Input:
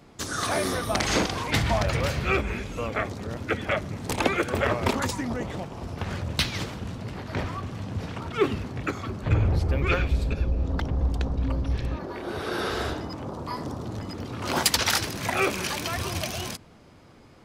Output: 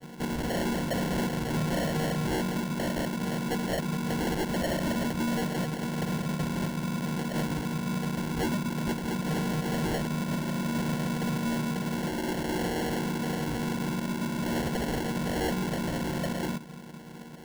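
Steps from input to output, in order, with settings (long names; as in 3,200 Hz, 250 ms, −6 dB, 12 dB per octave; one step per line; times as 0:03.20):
channel vocoder with a chord as carrier minor triad, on D#3
in parallel at +2 dB: downward compressor, threshold −36 dBFS, peak gain reduction 17 dB
on the sum: decimation without filtering 36×
gain into a clipping stage and back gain 26 dB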